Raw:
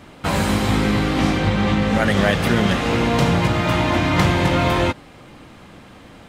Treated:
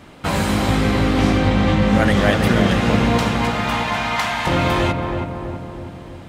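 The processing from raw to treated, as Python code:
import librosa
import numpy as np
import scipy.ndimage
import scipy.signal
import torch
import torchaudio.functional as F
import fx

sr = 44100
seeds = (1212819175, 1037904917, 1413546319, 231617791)

y = fx.steep_highpass(x, sr, hz=670.0, slope=72, at=(3.18, 4.47))
y = fx.echo_filtered(y, sr, ms=325, feedback_pct=63, hz=1200.0, wet_db=-4.0)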